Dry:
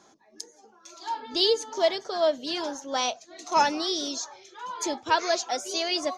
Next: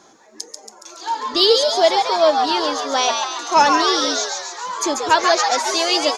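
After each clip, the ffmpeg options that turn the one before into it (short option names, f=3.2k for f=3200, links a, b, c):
-filter_complex "[0:a]acontrast=32,bandreject=f=50:t=h:w=6,bandreject=f=100:t=h:w=6,bandreject=f=150:t=h:w=6,bandreject=f=200:t=h:w=6,bandreject=f=250:t=h:w=6,asplit=9[a][b][c][d][e][f][g][h][i];[b]adelay=139,afreqshift=140,volume=-4.5dB[j];[c]adelay=278,afreqshift=280,volume=-9.2dB[k];[d]adelay=417,afreqshift=420,volume=-14dB[l];[e]adelay=556,afreqshift=560,volume=-18.7dB[m];[f]adelay=695,afreqshift=700,volume=-23.4dB[n];[g]adelay=834,afreqshift=840,volume=-28.2dB[o];[h]adelay=973,afreqshift=980,volume=-32.9dB[p];[i]adelay=1112,afreqshift=1120,volume=-37.6dB[q];[a][j][k][l][m][n][o][p][q]amix=inputs=9:normalize=0,volume=3dB"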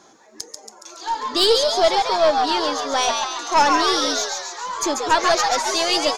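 -af "aeval=exprs='(tanh(2.24*val(0)+0.35)-tanh(0.35))/2.24':c=same"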